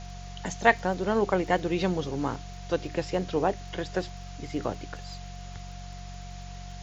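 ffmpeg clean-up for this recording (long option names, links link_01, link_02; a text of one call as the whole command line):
ffmpeg -i in.wav -af "adeclick=threshold=4,bandreject=frequency=46.4:width_type=h:width=4,bandreject=frequency=92.8:width_type=h:width=4,bandreject=frequency=139.2:width_type=h:width=4,bandreject=frequency=185.6:width_type=h:width=4,bandreject=frequency=710:width=30,afftdn=noise_reduction=30:noise_floor=-41" out.wav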